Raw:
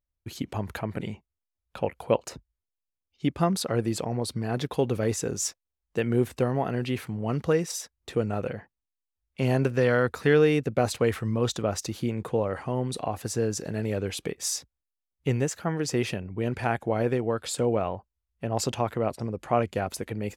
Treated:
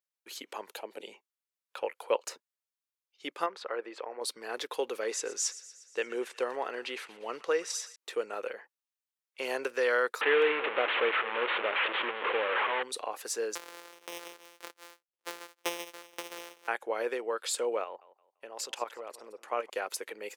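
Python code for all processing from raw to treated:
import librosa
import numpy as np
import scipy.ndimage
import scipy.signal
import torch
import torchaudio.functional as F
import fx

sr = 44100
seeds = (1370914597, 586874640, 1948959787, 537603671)

y = fx.chain(x, sr, fx.highpass(hz=160.0, slope=24),
    fx.band_shelf(hz=1500.0, db=-11.0, octaves=1.3), at=(0.69, 1.12))
y = fx.chain(y, sr, fx.lowpass(hz=2100.0, slope=12),
    fx.peak_eq(hz=150.0, db=-14.0, octaves=1.4), at=(3.46, 4.21))
y = fx.chain(y, sr, fx.lowpass(hz=8000.0, slope=12),
    fx.echo_wet_highpass(ms=119, feedback_pct=62, hz=1400.0, wet_db=-15.5), at=(5.02, 7.96))
y = fx.chain(y, sr, fx.delta_mod(bps=16000, step_db=-20.0),
    fx.echo_single(ms=212, db=-16.0), at=(10.21, 12.83))
y = fx.chain(y, sr, fx.sample_sort(block=256),
    fx.echo_single(ms=377, db=-3.5),
    fx.tremolo_decay(direction='decaying', hz=1.9, depth_db=26), at=(13.55, 16.68))
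y = fx.chain(y, sr, fx.level_steps(step_db=12),
    fx.echo_feedback(ms=170, feedback_pct=29, wet_db=-16.5), at=(17.84, 19.7))
y = scipy.signal.sosfilt(scipy.signal.butter(4, 470.0, 'highpass', fs=sr, output='sos'), y)
y = fx.peak_eq(y, sr, hz=690.0, db=-9.0, octaves=0.5)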